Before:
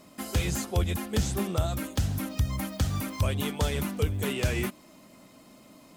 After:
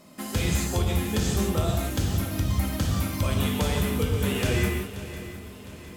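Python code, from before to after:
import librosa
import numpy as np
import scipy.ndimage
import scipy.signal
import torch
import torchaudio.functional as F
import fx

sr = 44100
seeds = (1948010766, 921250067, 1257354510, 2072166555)

y = fx.echo_swing(x, sr, ms=708, ratio=3, feedback_pct=46, wet_db=-14.5)
y = fx.rev_gated(y, sr, seeds[0], gate_ms=210, shape='flat', drr_db=-0.5)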